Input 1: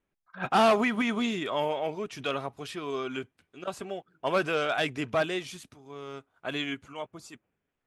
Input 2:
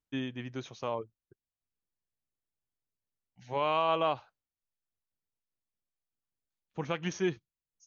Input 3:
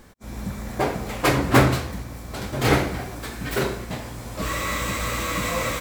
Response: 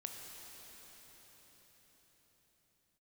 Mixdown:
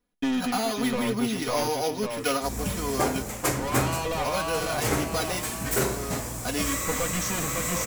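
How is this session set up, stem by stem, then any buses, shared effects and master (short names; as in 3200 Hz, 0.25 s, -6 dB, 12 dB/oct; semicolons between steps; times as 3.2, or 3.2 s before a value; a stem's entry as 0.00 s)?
+3.0 dB, 0.00 s, bus A, no send, no echo send, sample sorter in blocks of 8 samples
-1.5 dB, 0.10 s, bus A, no send, echo send -3 dB, sample leveller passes 5
-0.5 dB, 2.20 s, no bus, no send, no echo send, resonant high shelf 5200 Hz +9 dB, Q 1.5
bus A: 0.0 dB, comb 4.1 ms, depth 82%; compressor, threshold -19 dBFS, peak gain reduction 8 dB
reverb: off
echo: feedback echo 0.551 s, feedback 43%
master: vocal rider within 5 dB 0.5 s; flange 0.55 Hz, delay 8.4 ms, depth 4 ms, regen -86%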